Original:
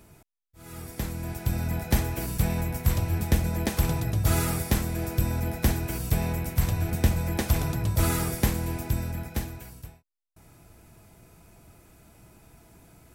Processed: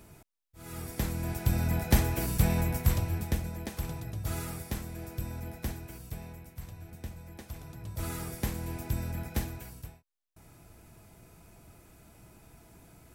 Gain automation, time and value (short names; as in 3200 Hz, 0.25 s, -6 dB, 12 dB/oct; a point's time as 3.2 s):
2.73 s 0 dB
3.61 s -11 dB
5.54 s -11 dB
6.57 s -19 dB
7.6 s -19 dB
8.07 s -11.5 dB
9.35 s -1.5 dB